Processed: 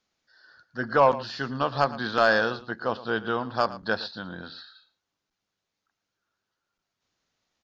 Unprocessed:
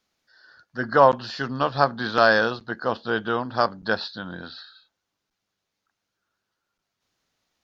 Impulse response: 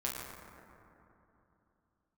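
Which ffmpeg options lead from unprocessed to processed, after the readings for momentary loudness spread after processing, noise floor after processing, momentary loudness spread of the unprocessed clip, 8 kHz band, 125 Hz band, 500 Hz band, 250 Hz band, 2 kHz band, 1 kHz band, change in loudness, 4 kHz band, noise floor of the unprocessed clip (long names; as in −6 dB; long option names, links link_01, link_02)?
17 LU, −84 dBFS, 18 LU, can't be measured, −3.0 dB, −3.0 dB, −3.0 dB, −3.0 dB, −3.5 dB, −3.5 dB, −3.0 dB, −82 dBFS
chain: -filter_complex "[0:a]asoftclip=type=tanh:threshold=-5dB,asplit=2[link_01][link_02];[link_02]aecho=0:1:113:0.15[link_03];[link_01][link_03]amix=inputs=2:normalize=0,aresample=16000,aresample=44100,volume=-2.5dB"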